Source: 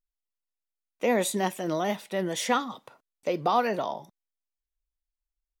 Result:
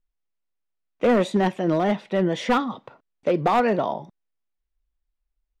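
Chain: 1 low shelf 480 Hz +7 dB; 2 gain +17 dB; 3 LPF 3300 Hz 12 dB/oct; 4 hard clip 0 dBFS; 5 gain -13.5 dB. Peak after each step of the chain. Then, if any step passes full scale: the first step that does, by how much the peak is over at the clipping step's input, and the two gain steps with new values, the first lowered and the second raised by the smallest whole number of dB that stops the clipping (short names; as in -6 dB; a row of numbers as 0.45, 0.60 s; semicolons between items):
-9.0, +8.0, +8.0, 0.0, -13.5 dBFS; step 2, 8.0 dB; step 2 +9 dB, step 5 -5.5 dB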